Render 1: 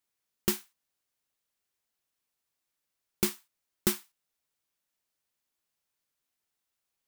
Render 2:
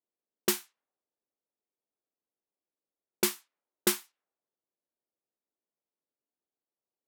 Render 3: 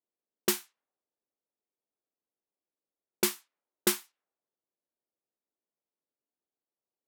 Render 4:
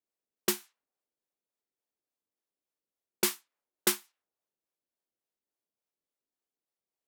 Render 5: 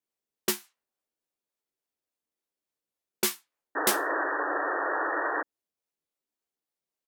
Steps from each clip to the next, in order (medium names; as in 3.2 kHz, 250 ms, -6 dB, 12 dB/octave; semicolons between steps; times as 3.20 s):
high-pass 310 Hz 12 dB/octave; level-controlled noise filter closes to 480 Hz, open at -32 dBFS; trim +4 dB
no audible change
harmonic tremolo 3.5 Hz, depth 50%, crossover 480 Hz; trim +1 dB
doubling 13 ms -5.5 dB; painted sound noise, 3.75–5.43 s, 280–1900 Hz -29 dBFS